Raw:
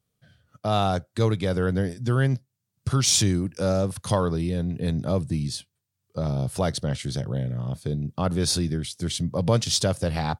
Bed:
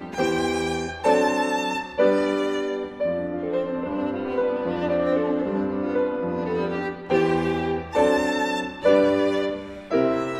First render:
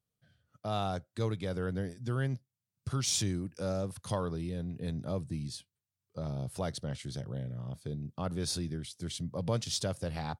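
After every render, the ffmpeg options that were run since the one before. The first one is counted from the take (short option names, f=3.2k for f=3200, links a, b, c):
-af "volume=-10.5dB"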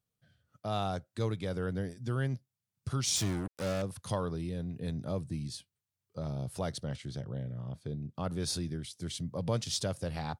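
-filter_complex "[0:a]asettb=1/sr,asplit=3[a][b][c];[a]atrim=end=3.164[d];[b]atrim=start=3.16:end=3.82,asetpts=PTS-STARTPTS,afade=t=in:d=0.004:c=qsin,afade=t=out:st=0.656:d=0.004:c=qsin,acrusher=bits=5:mix=0:aa=0.5[e];[c]atrim=start=3.816[f];[d][e]acrossfade=d=0.004:c1=hsin:c2=qsin[g];[g][f]acrossfade=d=0.004:c1=qsin:c2=hsin,asettb=1/sr,asplit=3[h][i][j];[h]atrim=end=6.964[k];[i]atrim=start=6.96:end=8.15,asetpts=PTS-STARTPTS,afade=t=in:d=0.004:c=qsin,afade=t=out:st=1.186:d=0.004:c=qsin,lowpass=f=3.8k:p=1[l];[j]atrim=start=8.146[m];[k][l]acrossfade=d=0.004:c1=hsin:c2=qsin[n];[n][m]acrossfade=d=0.004:c1=qsin:c2=hsin"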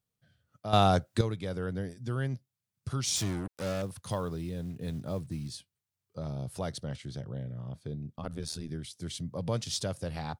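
-filter_complex "[0:a]asettb=1/sr,asplit=3[a][b][c];[a]atrim=end=3.654[d];[b]atrim=start=3.65:end=5.55,asetpts=PTS-STARTPTS,afade=t=in:d=0.004:c=qsin,afade=t=out:st=1.896:d=0.004:c=qsin,acrusher=bits=7:mode=log:mix=0:aa=0.000001[e];[c]atrim=start=5.546[f];[d][e]acrossfade=d=0.004:c1=hsin:c2=qsin[g];[g][f]acrossfade=d=0.004:c1=qsin:c2=hsin,asettb=1/sr,asplit=3[h][i][j];[h]atrim=end=8.164[k];[i]atrim=start=8.16:end=8.69,asetpts=PTS-STARTPTS,afade=t=in:d=0.004:c=qsin,afade=t=out:st=0.526:d=0.004:c=qsin,tremolo=f=79:d=0.889[l];[j]atrim=start=8.686[m];[k][l]acrossfade=d=0.004:c1=hsin:c2=qsin[n];[n][m]acrossfade=d=0.004:c1=qsin:c2=hsin,asplit=3[o][p][q];[o]atrim=end=0.732[r];[p]atrim=start=0.728:end=1.212,asetpts=PTS-STARTPTS,volume=10.5dB[s];[q]atrim=start=1.208[t];[r][s]acrossfade=d=0.004:c1=hsin:c2=hsin[u];[u][t]acrossfade=d=0.004:c1=hsin:c2=hsin"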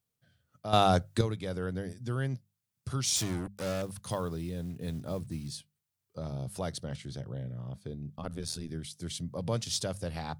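-af "highshelf=f=7.4k:g=4,bandreject=f=50:t=h:w=6,bandreject=f=100:t=h:w=6,bandreject=f=150:t=h:w=6,bandreject=f=200:t=h:w=6"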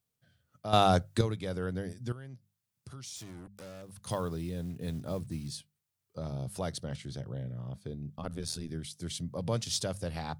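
-filter_complex "[0:a]asettb=1/sr,asplit=3[a][b][c];[a]atrim=end=2.124[d];[b]atrim=start=2.12:end=4.07,asetpts=PTS-STARTPTS,afade=t=in:d=0.004:c=qsin,afade=t=out:st=1.946:d=0.004:c=qsin,acompressor=threshold=-49dB:ratio=2.5:attack=3.2:release=140:knee=1:detection=peak[e];[c]atrim=start=4.066[f];[d][e]acrossfade=d=0.004:c1=hsin:c2=qsin[g];[g][f]acrossfade=d=0.004:c1=qsin:c2=hsin"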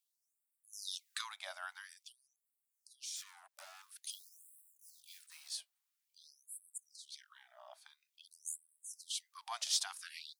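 -af "asoftclip=type=tanh:threshold=-13dB,afftfilt=real='re*gte(b*sr/1024,580*pow(7700/580,0.5+0.5*sin(2*PI*0.49*pts/sr)))':imag='im*gte(b*sr/1024,580*pow(7700/580,0.5+0.5*sin(2*PI*0.49*pts/sr)))':win_size=1024:overlap=0.75"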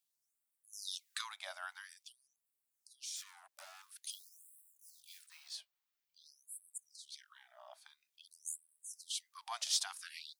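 -filter_complex "[0:a]asettb=1/sr,asplit=3[a][b][c];[a]atrim=end=5.294[d];[b]atrim=start=5.29:end=6.26,asetpts=PTS-STARTPTS,afade=t=in:d=0.004:c=qsin,afade=t=out:st=0.966:d=0.004:c=qsin,equalizer=f=9.9k:w=0.87:g=-10[e];[c]atrim=start=6.256[f];[d][e]acrossfade=d=0.004:c1=hsin:c2=qsin[g];[g][f]acrossfade=d=0.004:c1=qsin:c2=hsin"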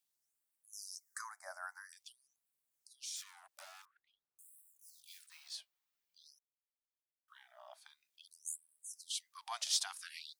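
-filter_complex "[0:a]asettb=1/sr,asplit=3[a][b][c];[a]atrim=end=0.824[d];[b]atrim=start=0.82:end=1.93,asetpts=PTS-STARTPTS,afade=t=in:d=0.004:c=qsin,afade=t=out:st=1.106:d=0.004:c=qsin,asuperstop=centerf=3100:order=8:qfactor=0.91[e];[c]atrim=start=1.926[f];[d][e]acrossfade=d=0.004:c1=hsin:c2=qsin[g];[g][f]acrossfade=d=0.004:c1=qsin:c2=hsin,asettb=1/sr,asplit=3[h][i][j];[h]atrim=end=3.854[k];[i]atrim=start=3.85:end=4.39,asetpts=PTS-STARTPTS,afade=t=in:d=0.004:c=qsin,afade=t=out:st=0.536:d=0.004:c=qsin,lowpass=f=1.5k:w=0.5412,lowpass=f=1.5k:w=1.3066[l];[j]atrim=start=4.386[m];[k][l]acrossfade=d=0.004:c1=hsin:c2=qsin[n];[n][m]acrossfade=d=0.004:c1=qsin:c2=hsin,asplit=3[o][p][q];[o]atrim=end=6.39,asetpts=PTS-STARTPTS,afade=t=out:st=6.386:d=0.004:c=hsin[r];[p]atrim=start=6.39:end=7.28,asetpts=PTS-STARTPTS,volume=0[s];[q]atrim=start=7.28,asetpts=PTS-STARTPTS,afade=t=in:d=0.004:c=hsin[t];[r][s][t]concat=n=3:v=0:a=1"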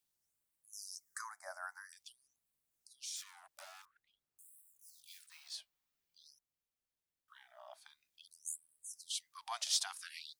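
-af "lowshelf=f=270:g=10.5"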